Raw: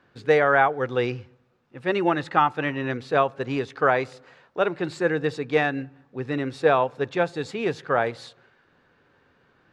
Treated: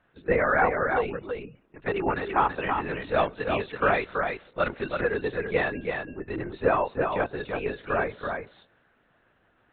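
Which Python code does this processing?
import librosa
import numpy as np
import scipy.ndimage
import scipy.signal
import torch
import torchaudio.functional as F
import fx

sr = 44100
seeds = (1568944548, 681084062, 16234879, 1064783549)

y = fx.high_shelf(x, sr, hz=2400.0, db=9.0, at=(3.03, 5.1))
y = fx.spec_gate(y, sr, threshold_db=-30, keep='strong')
y = fx.lpc_vocoder(y, sr, seeds[0], excitation='whisper', order=10)
y = fx.low_shelf(y, sr, hz=90.0, db=-11.5)
y = y + 10.0 ** (-5.0 / 20.0) * np.pad(y, (int(330 * sr / 1000.0), 0))[:len(y)]
y = y * librosa.db_to_amplitude(-3.5)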